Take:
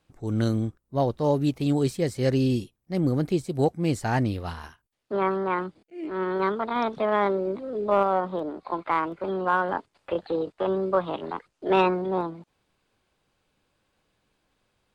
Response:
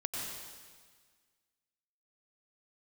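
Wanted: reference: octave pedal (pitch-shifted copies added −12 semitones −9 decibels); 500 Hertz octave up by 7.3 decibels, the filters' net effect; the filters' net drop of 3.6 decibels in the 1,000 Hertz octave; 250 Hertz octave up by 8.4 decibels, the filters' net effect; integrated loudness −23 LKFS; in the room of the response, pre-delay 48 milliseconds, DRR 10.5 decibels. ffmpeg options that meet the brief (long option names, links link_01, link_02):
-filter_complex "[0:a]equalizer=frequency=250:width_type=o:gain=8.5,equalizer=frequency=500:width_type=o:gain=8.5,equalizer=frequency=1000:width_type=o:gain=-8.5,asplit=2[link_01][link_02];[1:a]atrim=start_sample=2205,adelay=48[link_03];[link_02][link_03]afir=irnorm=-1:irlink=0,volume=-13.5dB[link_04];[link_01][link_04]amix=inputs=2:normalize=0,asplit=2[link_05][link_06];[link_06]asetrate=22050,aresample=44100,atempo=2,volume=-9dB[link_07];[link_05][link_07]amix=inputs=2:normalize=0,volume=-3.5dB"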